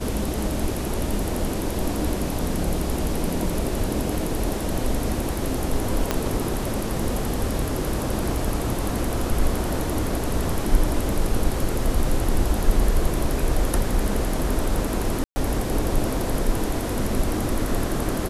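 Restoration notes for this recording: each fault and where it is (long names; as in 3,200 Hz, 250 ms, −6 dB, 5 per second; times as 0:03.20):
0:06.11: click −6 dBFS
0:15.24–0:15.36: drop-out 120 ms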